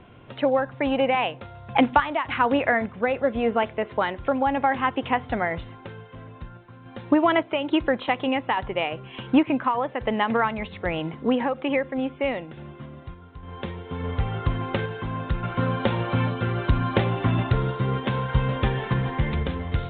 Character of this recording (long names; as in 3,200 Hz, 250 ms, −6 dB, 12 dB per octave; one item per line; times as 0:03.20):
sample-and-hold tremolo
A-law companding